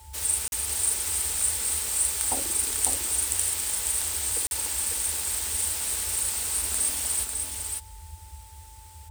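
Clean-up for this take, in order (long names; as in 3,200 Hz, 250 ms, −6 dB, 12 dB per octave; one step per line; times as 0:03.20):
notch filter 880 Hz, Q 30
repair the gap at 0:00.48/0:04.47, 41 ms
noise reduction from a noise print 30 dB
echo removal 548 ms −4 dB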